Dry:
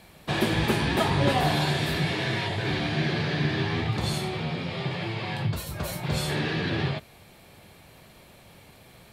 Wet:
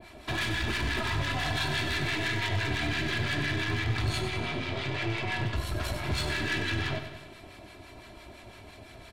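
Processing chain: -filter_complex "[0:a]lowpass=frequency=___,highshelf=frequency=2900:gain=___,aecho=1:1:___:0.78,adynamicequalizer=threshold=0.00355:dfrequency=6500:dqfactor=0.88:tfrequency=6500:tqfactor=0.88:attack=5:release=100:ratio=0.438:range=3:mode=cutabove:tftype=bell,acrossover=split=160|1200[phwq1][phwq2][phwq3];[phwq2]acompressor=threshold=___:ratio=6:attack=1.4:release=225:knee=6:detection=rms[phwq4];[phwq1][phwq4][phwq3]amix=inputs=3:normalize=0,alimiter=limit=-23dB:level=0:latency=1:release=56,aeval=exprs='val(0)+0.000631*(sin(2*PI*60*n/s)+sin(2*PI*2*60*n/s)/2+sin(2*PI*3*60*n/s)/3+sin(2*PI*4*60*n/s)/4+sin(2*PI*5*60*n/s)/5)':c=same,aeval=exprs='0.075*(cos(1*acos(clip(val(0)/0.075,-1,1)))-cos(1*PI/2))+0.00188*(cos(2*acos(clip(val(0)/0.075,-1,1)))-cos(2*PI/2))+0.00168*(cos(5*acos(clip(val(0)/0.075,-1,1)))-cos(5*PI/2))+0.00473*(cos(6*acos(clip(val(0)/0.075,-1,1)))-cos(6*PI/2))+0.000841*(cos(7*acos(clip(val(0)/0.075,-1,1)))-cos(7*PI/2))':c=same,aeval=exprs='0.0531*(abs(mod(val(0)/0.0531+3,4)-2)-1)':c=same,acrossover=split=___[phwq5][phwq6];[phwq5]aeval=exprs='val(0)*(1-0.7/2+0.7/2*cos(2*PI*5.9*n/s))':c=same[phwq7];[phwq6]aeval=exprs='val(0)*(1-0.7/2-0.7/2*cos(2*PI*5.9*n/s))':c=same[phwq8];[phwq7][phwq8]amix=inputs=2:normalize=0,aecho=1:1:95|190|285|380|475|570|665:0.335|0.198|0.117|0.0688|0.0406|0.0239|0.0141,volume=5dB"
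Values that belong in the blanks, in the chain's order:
8200, -4, 3, -36dB, 950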